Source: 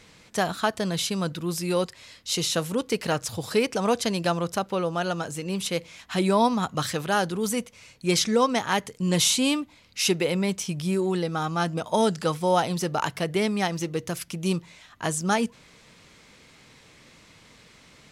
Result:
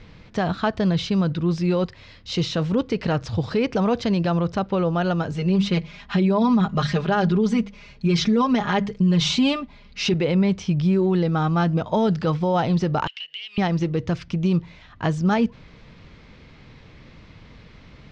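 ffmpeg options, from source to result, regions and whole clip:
-filter_complex "[0:a]asettb=1/sr,asplit=3[s0][s1][s2];[s0]atrim=end=5.314[s3];[s1]atrim=start=5.31:end=10.14,asetpts=PTS-STARTPTS,afade=t=in:d=0.004:c=qsin,afade=t=out:st=4.826:d=0.004:c=qsin,bandreject=f=50:t=h:w=6,bandreject=f=100:t=h:w=6,bandreject=f=150:t=h:w=6,bandreject=f=200:t=h:w=6,aecho=1:1:4.9:0.88,atrim=end_sample=213003[s4];[s2]atrim=start=10.136[s5];[s3][s4]acrossfade=d=0.004:c1=hsin:c2=qsin[s6];[s6][s5]acrossfade=d=0.004:c1=qsin:c2=hsin,asettb=1/sr,asplit=3[s7][s8][s9];[s7]atrim=end=13.074[s10];[s8]atrim=start=13.07:end=13.58,asetpts=PTS-STARTPTS,afade=t=in:d=0.004:c=qsin,afade=t=out:st=0.506:d=0.004:c=qsin,highpass=f=2900:t=q:w=16,acompressor=threshold=0.0224:ratio=5:attack=3.2:release=140:knee=1:detection=peak[s11];[s9]atrim=start=13.576[s12];[s10][s11]acrossfade=d=0.004:c1=hsin:c2=qsin[s13];[s13][s12]acrossfade=d=0.004:c1=qsin:c2=hsin,lowpass=f=5500:w=0.5412,lowpass=f=5500:w=1.3066,aemphasis=mode=reproduction:type=bsi,alimiter=limit=0.178:level=0:latency=1:release=39,volume=1.41"

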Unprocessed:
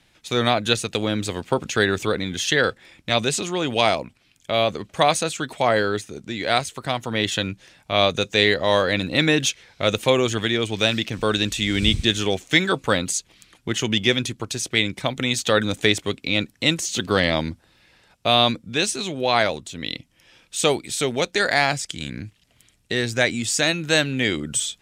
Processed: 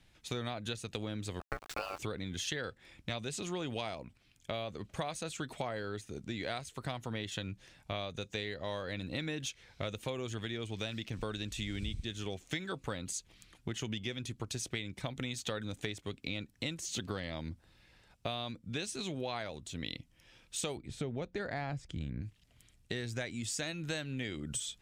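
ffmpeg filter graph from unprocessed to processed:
-filter_complex "[0:a]asettb=1/sr,asplit=3[s0][s1][s2];[s0]atrim=end=1.404[s3];[s1]atrim=start=1.4:end=1.99,asetpts=PTS-STARTPTS,afade=t=in:d=0.004:c=qsin,afade=t=out:st=0.586:d=0.004:c=qsin,adynamicsmooth=sensitivity=6:basefreq=6100,aeval=exprs='val(0)*gte(abs(val(0)),0.0398)':c=same,aeval=exprs='val(0)*sin(2*PI*960*n/s)':c=same[s4];[s2]atrim=start=1.986[s5];[s3][s4]acrossfade=d=0.004:c1=hsin:c2=qsin[s6];[s6][s5]acrossfade=d=0.004:c1=qsin:c2=hsin,asettb=1/sr,asplit=3[s7][s8][s9];[s7]atrim=end=20.774[s10];[s8]atrim=start=20.77:end=22.22,asetpts=PTS-STARTPTS,afade=t=in:d=0.004:c=qsin,afade=t=out:st=1.446:d=0.004:c=qsin,lowpass=f=1100:p=1,lowshelf=f=170:g=7.5[s11];[s9]atrim=start=22.216[s12];[s10][s11]acrossfade=d=0.004:c1=hsin:c2=qsin[s13];[s13][s12]acrossfade=d=0.004:c1=qsin:c2=hsin,lowshelf=f=120:g=11.5,acompressor=threshold=0.0562:ratio=12,volume=0.355"

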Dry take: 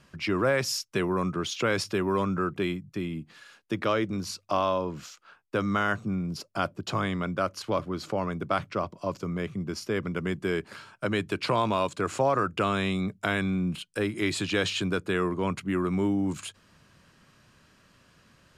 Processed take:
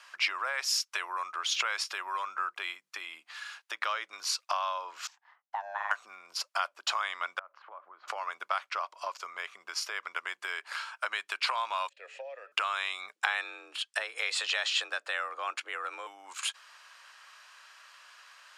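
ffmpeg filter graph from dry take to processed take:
-filter_complex "[0:a]asettb=1/sr,asplit=3[s0][s1][s2];[s0]atrim=end=5.074[s3];[s1]atrim=start=5.07:end=5.91,asetpts=PTS-STARTPTS,afade=t=in:d=0.004:c=qsin,afade=t=out:st=0.836:d=0.004:c=qsin,bandpass=f=390:t=q:w=1.3,aemphasis=mode=production:type=50fm,aeval=exprs='val(0)*sin(2*PI*400*n/s)':c=same[s4];[s2]atrim=start=5.906[s5];[s3][s4]acrossfade=d=0.004:c1=hsin:c2=qsin[s6];[s6][s5]acrossfade=d=0.004:c1=qsin:c2=hsin,asettb=1/sr,asplit=3[s7][s8][s9];[s7]atrim=end=7.394[s10];[s8]atrim=start=7.39:end=8.08,asetpts=PTS-STARTPTS,afade=t=in:d=0.004:c=qsin,afade=t=out:st=0.686:d=0.004:c=qsin,acompressor=threshold=0.00891:ratio=12:attack=3.2:release=140:knee=1:detection=peak,lowpass=1300,aemphasis=mode=reproduction:type=75kf[s11];[s9]atrim=start=8.076[s12];[s10][s11]acrossfade=d=0.004:c1=hsin:c2=qsin[s13];[s13][s12]acrossfade=d=0.004:c1=qsin:c2=hsin,asettb=1/sr,asplit=3[s14][s15][s16];[s14]atrim=end=11.894[s17];[s15]atrim=start=11.89:end=12.52,asetpts=PTS-STARTPTS,afade=t=in:d=0.004:c=qsin,afade=t=out:st=0.626:d=0.004:c=qsin,asplit=3[s18][s19][s20];[s18]bandpass=f=530:t=q:w=8,volume=1[s21];[s19]bandpass=f=1840:t=q:w=8,volume=0.501[s22];[s20]bandpass=f=2480:t=q:w=8,volume=0.355[s23];[s21][s22][s23]amix=inputs=3:normalize=0,equalizer=f=1500:w=4.4:g=-14,bandreject=f=145:t=h:w=4,bandreject=f=290:t=h:w=4,bandreject=f=435:t=h:w=4,bandreject=f=580:t=h:w=4,bandreject=f=725:t=h:w=4,bandreject=f=870:t=h:w=4,bandreject=f=1015:t=h:w=4,bandreject=f=1160:t=h:w=4,bandreject=f=1305:t=h:w=4,bandreject=f=1450:t=h:w=4,bandreject=f=1595:t=h:w=4,bandreject=f=1740:t=h:w=4,bandreject=f=1885:t=h:w=4,bandreject=f=2030:t=h:w=4,bandreject=f=2175:t=h:w=4,bandreject=f=2320:t=h:w=4,bandreject=f=2465:t=h:w=4,bandreject=f=2610:t=h:w=4,bandreject=f=2755:t=h:w=4,bandreject=f=2900:t=h:w=4,bandreject=f=3045:t=h:w=4,bandreject=f=3190:t=h:w=4,bandreject=f=3335:t=h:w=4,bandreject=f=3480:t=h:w=4,bandreject=f=3625:t=h:w=4,bandreject=f=3770:t=h:w=4,bandreject=f=3915:t=h:w=4,bandreject=f=4060:t=h:w=4,bandreject=f=4205:t=h:w=4,bandreject=f=4350:t=h:w=4,bandreject=f=4495:t=h:w=4,bandreject=f=4640:t=h:w=4,bandreject=f=4785:t=h:w=4,bandreject=f=4930:t=h:w=4,bandreject=f=5075:t=h:w=4,bandreject=f=5220:t=h:w=4[s24];[s16]atrim=start=12.516[s25];[s17][s24]acrossfade=d=0.004:c1=hsin:c2=qsin[s26];[s26][s25]acrossfade=d=0.004:c1=qsin:c2=hsin,asettb=1/sr,asplit=3[s27][s28][s29];[s27]atrim=end=13.164[s30];[s28]atrim=start=13.16:end=16.07,asetpts=PTS-STARTPTS,afade=t=in:d=0.004:c=qsin,afade=t=out:st=2.906:d=0.004:c=qsin,afreqshift=130,lowpass=9400[s31];[s29]atrim=start=16.066[s32];[s30][s31]acrossfade=d=0.004:c1=hsin:c2=qsin[s33];[s33][s32]acrossfade=d=0.004:c1=qsin:c2=hsin,highshelf=f=11000:g=-9.5,acompressor=threshold=0.0224:ratio=6,highpass=f=870:w=0.5412,highpass=f=870:w=1.3066,volume=2.82"

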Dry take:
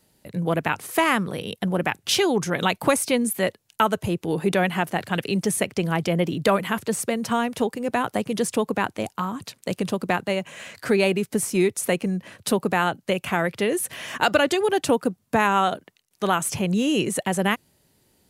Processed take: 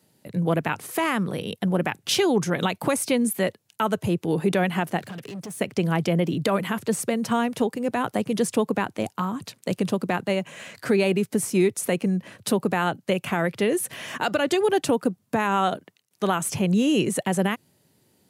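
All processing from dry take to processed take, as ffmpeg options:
-filter_complex "[0:a]asettb=1/sr,asplit=3[s0][s1][s2];[s0]atrim=end=4.994[s3];[s1]atrim=start=4.99:end=5.61,asetpts=PTS-STARTPTS,afade=t=in:d=0.004:c=qsin,afade=t=out:st=0.616:d=0.004:c=qsin,highpass=93,acompressor=threshold=0.0316:ratio=4:attack=3.2:release=140:knee=1:detection=peak,asoftclip=type=hard:threshold=0.0211[s4];[s2]atrim=start=5.606[s5];[s3][s4]acrossfade=d=0.004:c1=hsin:c2=qsin[s6];[s6][s5]acrossfade=d=0.004:c1=qsin:c2=hsin,highpass=f=97:w=0.5412,highpass=f=97:w=1.3066,lowshelf=f=460:g=4,alimiter=limit=0.316:level=0:latency=1:release=97,volume=0.841"

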